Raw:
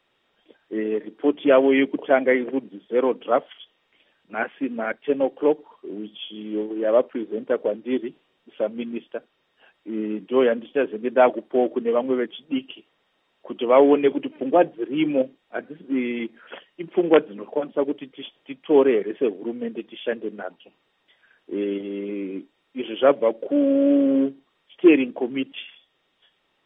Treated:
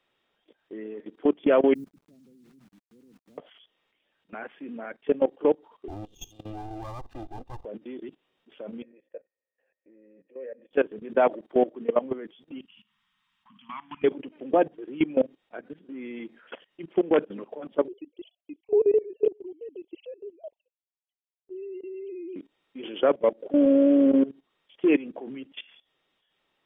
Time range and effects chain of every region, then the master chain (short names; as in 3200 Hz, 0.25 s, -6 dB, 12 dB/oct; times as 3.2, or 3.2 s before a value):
1.74–3.38 ladder low-pass 200 Hz, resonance 25% + requantised 10-bit, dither none
5.88–7.65 minimum comb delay 1.1 ms + bell 1800 Hz -9.5 dB 1.5 oct + comb 2.5 ms, depth 62%
8.82–10.71 compressor 5:1, threshold -26 dBFS + vocal tract filter e + doubler 15 ms -8 dB
12.65–14.03 elliptic band-stop 210–1000 Hz, stop band 60 dB + compressor 3:1, threshold -37 dBFS + flutter echo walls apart 9.6 m, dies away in 0.31 s
17.88–22.36 sine-wave speech + Butterworth band-stop 1400 Hz, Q 0.62 + gate with hold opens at -39 dBFS, closes at -48 dBFS
whole clip: dynamic EQ 3000 Hz, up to -3 dB, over -41 dBFS, Q 1.3; level quantiser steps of 19 dB; gain +1 dB